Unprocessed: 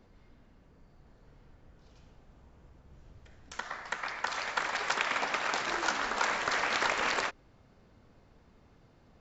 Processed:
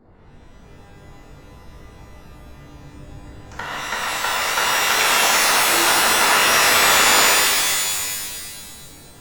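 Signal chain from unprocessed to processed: Wiener smoothing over 15 samples; shimmer reverb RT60 1.9 s, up +12 st, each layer -2 dB, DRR -7 dB; gain +6 dB

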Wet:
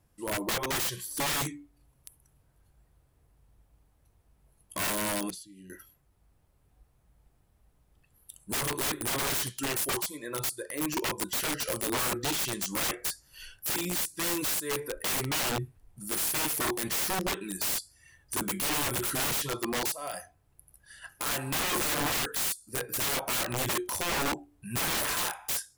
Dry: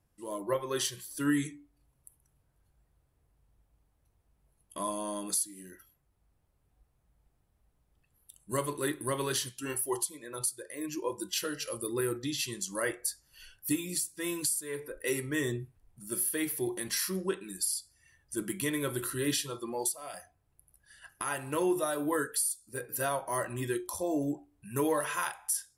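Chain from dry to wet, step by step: 5.3–5.7 EQ curve 110 Hz 0 dB, 1300 Hz -22 dB, 2900 Hz -5 dB, 10000 Hz -24 dB; wrapped overs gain 30.5 dB; gain +6 dB

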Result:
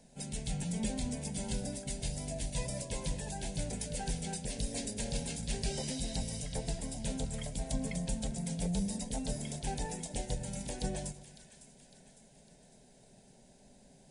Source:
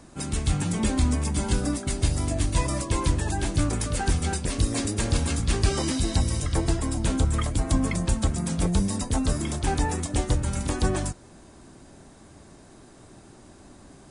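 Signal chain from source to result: fixed phaser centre 320 Hz, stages 6; split-band echo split 1300 Hz, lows 0.115 s, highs 0.555 s, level -14 dB; gain -8 dB

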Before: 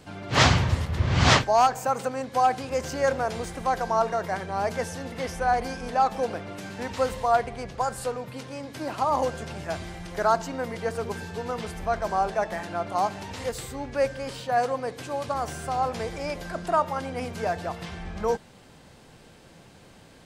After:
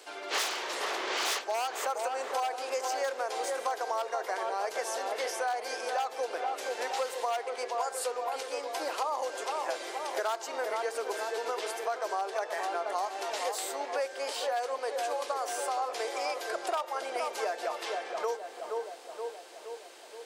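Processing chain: high shelf 7800 Hz -3.5 dB; wavefolder -15 dBFS; elliptic high-pass 370 Hz, stop band 80 dB; high shelf 3100 Hz +9 dB; tape echo 0.472 s, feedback 67%, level -6 dB, low-pass 1200 Hz; compressor 6:1, threshold -29 dBFS, peak gain reduction 13 dB

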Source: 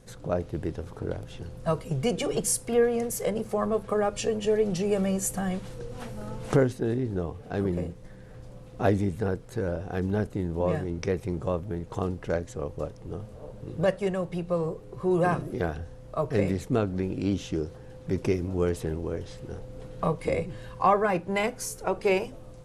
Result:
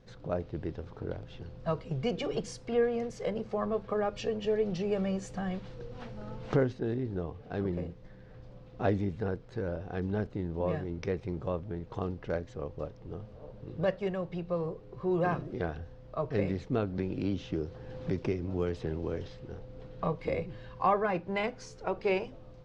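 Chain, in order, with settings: LPF 5000 Hz 24 dB/oct; 16.98–19.28 three-band squash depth 70%; gain -5 dB

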